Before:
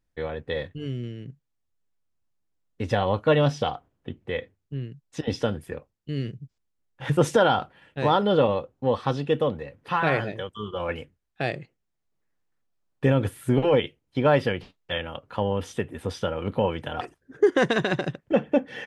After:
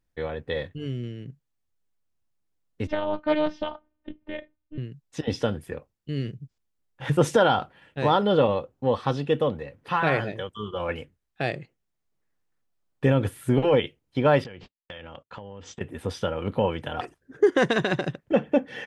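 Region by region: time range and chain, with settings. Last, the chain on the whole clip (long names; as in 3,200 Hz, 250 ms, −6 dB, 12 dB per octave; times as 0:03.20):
0:02.87–0:04.78: phases set to zero 305 Hz + high-frequency loss of the air 220 metres + highs frequency-modulated by the lows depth 0.18 ms
0:14.44–0:15.81: noise gate −47 dBFS, range −37 dB + downward compressor 10 to 1, threshold −36 dBFS + linear-phase brick-wall low-pass 8,100 Hz
whole clip: no processing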